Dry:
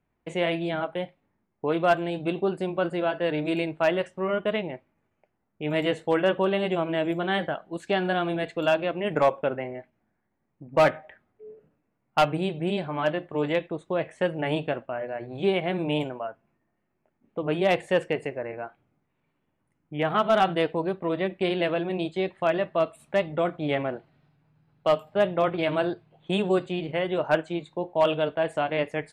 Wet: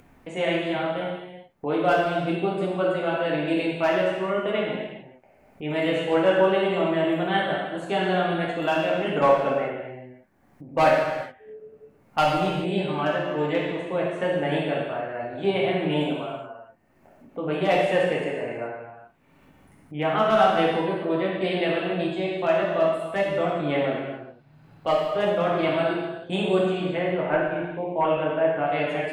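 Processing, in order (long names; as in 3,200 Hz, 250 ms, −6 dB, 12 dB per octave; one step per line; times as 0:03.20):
0:26.97–0:28.67: Chebyshev low-pass filter 2,300 Hz, order 3
reverb whose tail is shaped and stops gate 450 ms falling, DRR −5 dB
upward compression, threshold −34 dBFS
level −3.5 dB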